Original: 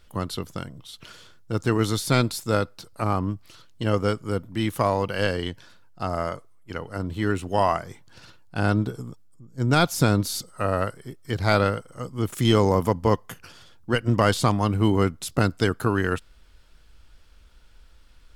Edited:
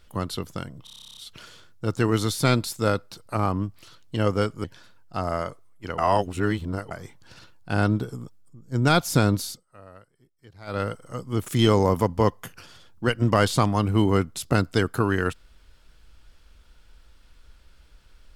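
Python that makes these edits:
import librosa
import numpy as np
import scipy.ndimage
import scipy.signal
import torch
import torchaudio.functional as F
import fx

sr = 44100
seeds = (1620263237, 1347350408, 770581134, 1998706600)

y = fx.edit(x, sr, fx.stutter(start_s=0.84, slice_s=0.03, count=12),
    fx.cut(start_s=4.31, length_s=1.19),
    fx.reverse_span(start_s=6.84, length_s=0.93),
    fx.fade_down_up(start_s=10.23, length_s=1.55, db=-23.0, fade_s=0.26), tone=tone)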